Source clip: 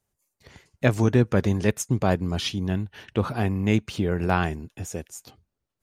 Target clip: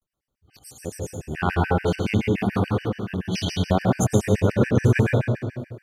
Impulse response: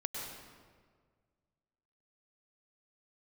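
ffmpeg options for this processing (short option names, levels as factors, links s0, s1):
-filter_complex "[0:a]areverse[s0];[1:a]atrim=start_sample=2205[s1];[s0][s1]afir=irnorm=-1:irlink=0,afftfilt=real='re*gt(sin(2*PI*7*pts/sr)*(1-2*mod(floor(b*sr/1024/1500),2)),0)':imag='im*gt(sin(2*PI*7*pts/sr)*(1-2*mod(floor(b*sr/1024/1500),2)),0)':win_size=1024:overlap=0.75,volume=1.41"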